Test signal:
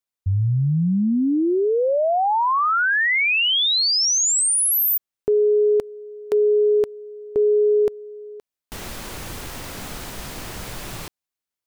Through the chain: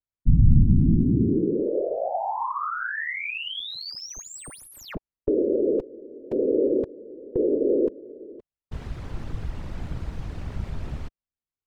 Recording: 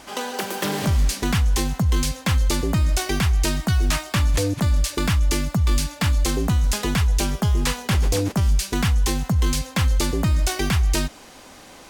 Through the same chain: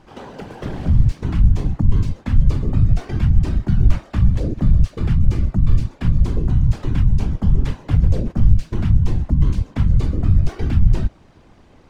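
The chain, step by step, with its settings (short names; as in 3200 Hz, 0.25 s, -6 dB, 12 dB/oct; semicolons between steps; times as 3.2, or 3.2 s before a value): median filter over 3 samples; whisperiser; RIAA curve playback; gain -9 dB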